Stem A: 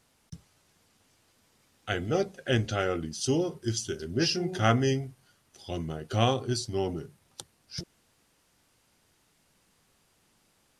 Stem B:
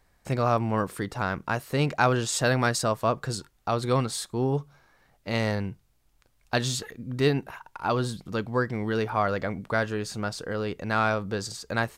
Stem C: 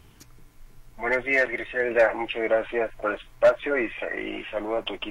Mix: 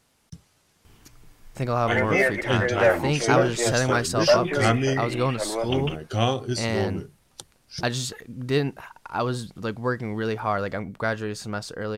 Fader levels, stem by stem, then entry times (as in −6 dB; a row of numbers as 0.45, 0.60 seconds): +2.0, 0.0, −0.5 decibels; 0.00, 1.30, 0.85 seconds